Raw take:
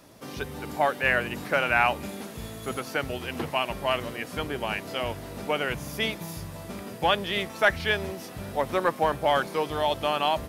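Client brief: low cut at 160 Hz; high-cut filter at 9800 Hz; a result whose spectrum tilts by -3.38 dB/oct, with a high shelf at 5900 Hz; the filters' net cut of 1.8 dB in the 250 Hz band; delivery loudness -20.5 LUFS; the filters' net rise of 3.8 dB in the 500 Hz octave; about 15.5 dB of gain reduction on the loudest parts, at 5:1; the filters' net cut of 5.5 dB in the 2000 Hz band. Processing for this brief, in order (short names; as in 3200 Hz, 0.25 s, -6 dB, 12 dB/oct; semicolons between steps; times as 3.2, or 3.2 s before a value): HPF 160 Hz; LPF 9800 Hz; bell 250 Hz -3.5 dB; bell 500 Hz +6 dB; bell 2000 Hz -7 dB; high shelf 5900 Hz -8.5 dB; compressor 5:1, threshold -35 dBFS; gain +18 dB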